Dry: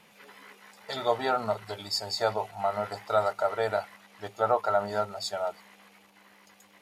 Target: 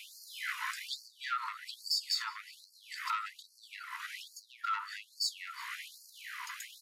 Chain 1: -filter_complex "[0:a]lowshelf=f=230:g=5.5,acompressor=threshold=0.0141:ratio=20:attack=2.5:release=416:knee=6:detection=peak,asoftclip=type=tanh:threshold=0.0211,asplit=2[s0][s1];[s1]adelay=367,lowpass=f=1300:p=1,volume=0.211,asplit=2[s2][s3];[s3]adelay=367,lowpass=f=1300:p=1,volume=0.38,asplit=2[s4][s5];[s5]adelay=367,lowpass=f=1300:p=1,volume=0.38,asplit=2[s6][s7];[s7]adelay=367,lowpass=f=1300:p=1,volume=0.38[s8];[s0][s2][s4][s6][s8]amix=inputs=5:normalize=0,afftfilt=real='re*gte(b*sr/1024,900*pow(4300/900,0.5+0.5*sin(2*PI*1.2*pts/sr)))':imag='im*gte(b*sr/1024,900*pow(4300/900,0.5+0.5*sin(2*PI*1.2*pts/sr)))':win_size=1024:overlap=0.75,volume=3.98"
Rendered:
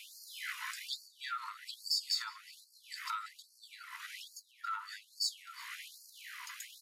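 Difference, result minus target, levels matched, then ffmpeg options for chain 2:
1 kHz band -2.5 dB
-filter_complex "[0:a]lowshelf=f=230:g=5.5,acompressor=threshold=0.0141:ratio=20:attack=2.5:release=416:knee=6:detection=peak,equalizer=f=710:w=0.37:g=7.5,asoftclip=type=tanh:threshold=0.0211,asplit=2[s0][s1];[s1]adelay=367,lowpass=f=1300:p=1,volume=0.211,asplit=2[s2][s3];[s3]adelay=367,lowpass=f=1300:p=1,volume=0.38,asplit=2[s4][s5];[s5]adelay=367,lowpass=f=1300:p=1,volume=0.38,asplit=2[s6][s7];[s7]adelay=367,lowpass=f=1300:p=1,volume=0.38[s8];[s0][s2][s4][s6][s8]amix=inputs=5:normalize=0,afftfilt=real='re*gte(b*sr/1024,900*pow(4300/900,0.5+0.5*sin(2*PI*1.2*pts/sr)))':imag='im*gte(b*sr/1024,900*pow(4300/900,0.5+0.5*sin(2*PI*1.2*pts/sr)))':win_size=1024:overlap=0.75,volume=3.98"

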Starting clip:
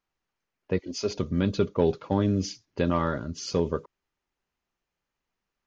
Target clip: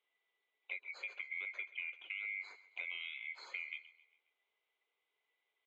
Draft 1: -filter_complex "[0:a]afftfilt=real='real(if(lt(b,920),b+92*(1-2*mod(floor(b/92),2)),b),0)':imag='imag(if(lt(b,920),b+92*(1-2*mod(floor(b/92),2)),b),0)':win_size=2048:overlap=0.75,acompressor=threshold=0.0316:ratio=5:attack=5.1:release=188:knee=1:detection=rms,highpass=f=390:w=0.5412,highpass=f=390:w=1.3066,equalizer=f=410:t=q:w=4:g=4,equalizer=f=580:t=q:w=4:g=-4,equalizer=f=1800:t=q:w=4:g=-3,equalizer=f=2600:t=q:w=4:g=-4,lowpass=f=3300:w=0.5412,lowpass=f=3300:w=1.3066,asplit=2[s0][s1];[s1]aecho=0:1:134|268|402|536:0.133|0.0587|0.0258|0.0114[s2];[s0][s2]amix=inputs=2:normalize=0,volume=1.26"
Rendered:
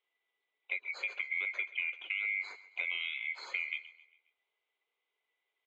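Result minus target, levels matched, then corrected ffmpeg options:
compression: peak gain reduction -7.5 dB
-filter_complex "[0:a]afftfilt=real='real(if(lt(b,920),b+92*(1-2*mod(floor(b/92),2)),b),0)':imag='imag(if(lt(b,920),b+92*(1-2*mod(floor(b/92),2)),b),0)':win_size=2048:overlap=0.75,acompressor=threshold=0.0106:ratio=5:attack=5.1:release=188:knee=1:detection=rms,highpass=f=390:w=0.5412,highpass=f=390:w=1.3066,equalizer=f=410:t=q:w=4:g=4,equalizer=f=580:t=q:w=4:g=-4,equalizer=f=1800:t=q:w=4:g=-3,equalizer=f=2600:t=q:w=4:g=-4,lowpass=f=3300:w=0.5412,lowpass=f=3300:w=1.3066,asplit=2[s0][s1];[s1]aecho=0:1:134|268|402|536:0.133|0.0587|0.0258|0.0114[s2];[s0][s2]amix=inputs=2:normalize=0,volume=1.26"

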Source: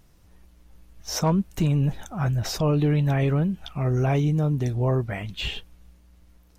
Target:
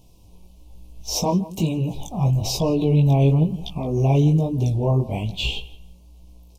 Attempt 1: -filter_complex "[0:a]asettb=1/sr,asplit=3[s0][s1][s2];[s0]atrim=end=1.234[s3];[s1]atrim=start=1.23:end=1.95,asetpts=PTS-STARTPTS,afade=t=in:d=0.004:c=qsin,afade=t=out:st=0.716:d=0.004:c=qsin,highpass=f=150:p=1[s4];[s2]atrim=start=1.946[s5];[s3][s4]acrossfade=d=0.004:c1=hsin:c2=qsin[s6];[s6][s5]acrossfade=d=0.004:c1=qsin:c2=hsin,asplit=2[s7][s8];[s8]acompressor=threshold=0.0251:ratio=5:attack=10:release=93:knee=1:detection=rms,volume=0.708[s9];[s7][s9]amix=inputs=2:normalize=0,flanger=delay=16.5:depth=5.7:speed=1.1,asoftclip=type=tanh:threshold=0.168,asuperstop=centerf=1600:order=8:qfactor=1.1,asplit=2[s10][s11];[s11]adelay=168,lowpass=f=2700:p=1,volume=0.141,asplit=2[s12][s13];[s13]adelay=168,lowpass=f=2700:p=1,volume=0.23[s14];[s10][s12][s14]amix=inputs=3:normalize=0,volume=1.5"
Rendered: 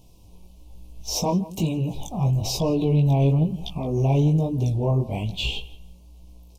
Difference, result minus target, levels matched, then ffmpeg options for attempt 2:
saturation: distortion +18 dB; compression: peak gain reduction +5 dB
-filter_complex "[0:a]asettb=1/sr,asplit=3[s0][s1][s2];[s0]atrim=end=1.234[s3];[s1]atrim=start=1.23:end=1.95,asetpts=PTS-STARTPTS,afade=t=in:d=0.004:c=qsin,afade=t=out:st=0.716:d=0.004:c=qsin,highpass=f=150:p=1[s4];[s2]atrim=start=1.946[s5];[s3][s4]acrossfade=d=0.004:c1=hsin:c2=qsin[s6];[s6][s5]acrossfade=d=0.004:c1=qsin:c2=hsin,asplit=2[s7][s8];[s8]acompressor=threshold=0.0531:ratio=5:attack=10:release=93:knee=1:detection=rms,volume=0.708[s9];[s7][s9]amix=inputs=2:normalize=0,flanger=delay=16.5:depth=5.7:speed=1.1,asoftclip=type=tanh:threshold=0.596,asuperstop=centerf=1600:order=8:qfactor=1.1,asplit=2[s10][s11];[s11]adelay=168,lowpass=f=2700:p=1,volume=0.141,asplit=2[s12][s13];[s13]adelay=168,lowpass=f=2700:p=1,volume=0.23[s14];[s10][s12][s14]amix=inputs=3:normalize=0,volume=1.5"

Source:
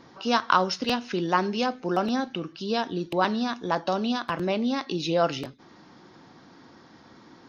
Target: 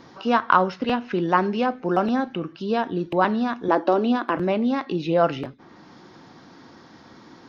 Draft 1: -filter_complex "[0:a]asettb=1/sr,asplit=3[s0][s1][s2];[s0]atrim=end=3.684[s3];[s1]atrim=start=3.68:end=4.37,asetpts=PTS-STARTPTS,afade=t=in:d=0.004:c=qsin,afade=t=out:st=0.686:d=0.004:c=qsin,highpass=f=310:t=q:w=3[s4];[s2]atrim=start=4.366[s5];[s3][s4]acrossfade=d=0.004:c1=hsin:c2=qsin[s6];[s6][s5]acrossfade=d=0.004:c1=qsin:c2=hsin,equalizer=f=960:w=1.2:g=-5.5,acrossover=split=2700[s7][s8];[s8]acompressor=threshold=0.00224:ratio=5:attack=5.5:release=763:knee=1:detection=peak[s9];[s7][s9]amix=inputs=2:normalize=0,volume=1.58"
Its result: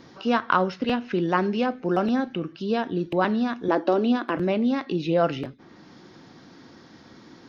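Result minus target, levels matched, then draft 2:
1 kHz band -2.5 dB
-filter_complex "[0:a]asettb=1/sr,asplit=3[s0][s1][s2];[s0]atrim=end=3.684[s3];[s1]atrim=start=3.68:end=4.37,asetpts=PTS-STARTPTS,afade=t=in:d=0.004:c=qsin,afade=t=out:st=0.686:d=0.004:c=qsin,highpass=f=310:t=q:w=3[s4];[s2]atrim=start=4.366[s5];[s3][s4]acrossfade=d=0.004:c1=hsin:c2=qsin[s6];[s6][s5]acrossfade=d=0.004:c1=qsin:c2=hsin,acrossover=split=2700[s7][s8];[s8]acompressor=threshold=0.00224:ratio=5:attack=5.5:release=763:knee=1:detection=peak[s9];[s7][s9]amix=inputs=2:normalize=0,volume=1.58"

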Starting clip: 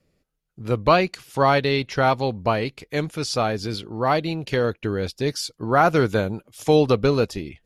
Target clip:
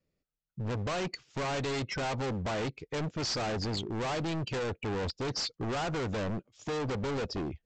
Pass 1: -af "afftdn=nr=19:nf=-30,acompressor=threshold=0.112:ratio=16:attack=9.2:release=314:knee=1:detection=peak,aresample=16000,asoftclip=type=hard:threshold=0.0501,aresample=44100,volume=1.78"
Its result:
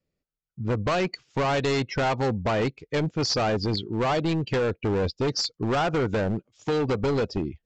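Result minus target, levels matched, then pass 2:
hard clipper: distortion -5 dB
-af "afftdn=nr=19:nf=-30,acompressor=threshold=0.112:ratio=16:attack=9.2:release=314:knee=1:detection=peak,aresample=16000,asoftclip=type=hard:threshold=0.015,aresample=44100,volume=1.78"

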